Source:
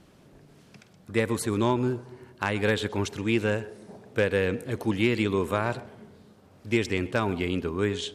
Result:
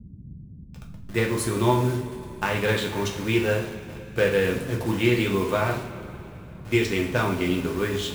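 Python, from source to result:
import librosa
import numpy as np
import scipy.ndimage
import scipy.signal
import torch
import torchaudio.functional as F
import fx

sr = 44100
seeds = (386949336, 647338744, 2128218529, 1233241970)

y = fx.delta_hold(x, sr, step_db=-37.5)
y = fx.rev_double_slope(y, sr, seeds[0], early_s=0.45, late_s=3.6, knee_db=-18, drr_db=-1.0)
y = fx.dmg_noise_band(y, sr, seeds[1], low_hz=40.0, high_hz=200.0, level_db=-42.0)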